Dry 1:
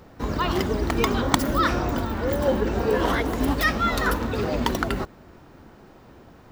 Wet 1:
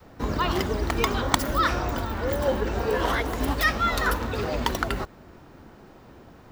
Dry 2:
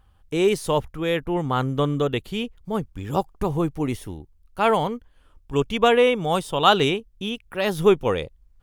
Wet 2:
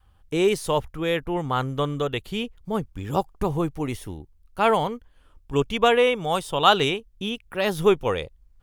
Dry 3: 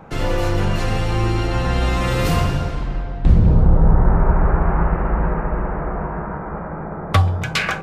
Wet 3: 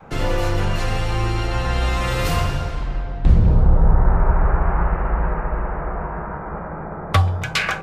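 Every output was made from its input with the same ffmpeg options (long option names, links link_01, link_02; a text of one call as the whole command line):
ffmpeg -i in.wav -af "adynamicequalizer=threshold=0.0224:dfrequency=230:dqfactor=0.7:tfrequency=230:tqfactor=0.7:attack=5:release=100:ratio=0.375:range=3.5:mode=cutabove:tftype=bell" out.wav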